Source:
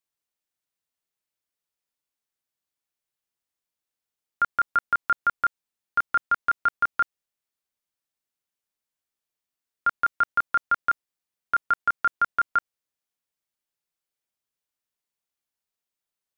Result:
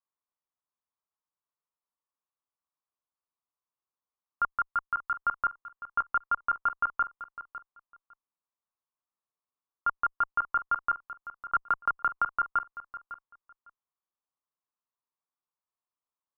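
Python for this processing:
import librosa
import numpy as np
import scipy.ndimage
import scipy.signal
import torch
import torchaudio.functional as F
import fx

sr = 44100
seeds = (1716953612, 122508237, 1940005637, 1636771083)

y = fx.peak_eq(x, sr, hz=400.0, db=fx.line((4.47, -4.0), (5.17, -13.5)), octaves=2.1, at=(4.47, 5.17), fade=0.02)
y = fx.cheby_harmonics(y, sr, harmonics=(2, 8), levels_db=(-20, -32), full_scale_db=-15.0)
y = fx.lowpass_res(y, sr, hz=1100.0, q=4.2)
y = fx.echo_feedback(y, sr, ms=554, feedback_pct=17, wet_db=-14)
y = fx.band_squash(y, sr, depth_pct=100, at=(11.55, 12.28))
y = y * 10.0 ** (-8.5 / 20.0)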